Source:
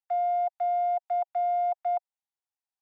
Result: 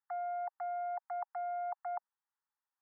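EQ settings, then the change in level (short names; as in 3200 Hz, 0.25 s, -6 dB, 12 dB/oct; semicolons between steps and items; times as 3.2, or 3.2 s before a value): elliptic band-pass 830–1900 Hz; fixed phaser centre 1200 Hz, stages 4; +7.5 dB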